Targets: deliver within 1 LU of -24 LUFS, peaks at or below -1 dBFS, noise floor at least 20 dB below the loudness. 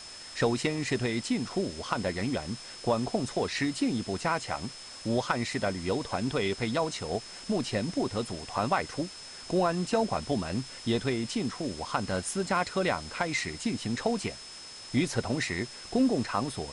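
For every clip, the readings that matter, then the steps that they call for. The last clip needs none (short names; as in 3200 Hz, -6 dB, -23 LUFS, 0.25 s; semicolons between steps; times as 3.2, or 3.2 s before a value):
steady tone 5200 Hz; tone level -45 dBFS; noise floor -45 dBFS; noise floor target -51 dBFS; loudness -30.5 LUFS; peak -13.5 dBFS; loudness target -24.0 LUFS
-> notch 5200 Hz, Q 30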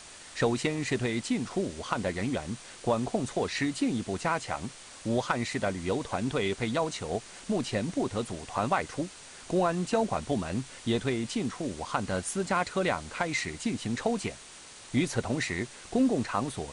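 steady tone none; noise floor -48 dBFS; noise floor target -51 dBFS
-> denoiser 6 dB, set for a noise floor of -48 dBFS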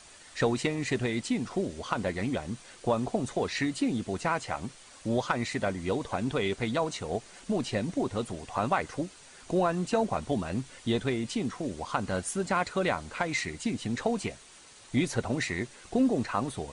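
noise floor -53 dBFS; loudness -31.0 LUFS; peak -13.5 dBFS; loudness target -24.0 LUFS
-> gain +7 dB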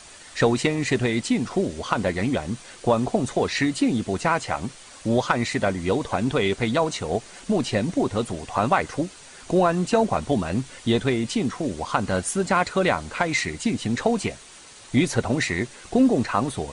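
loudness -24.0 LUFS; peak -6.5 dBFS; noise floor -46 dBFS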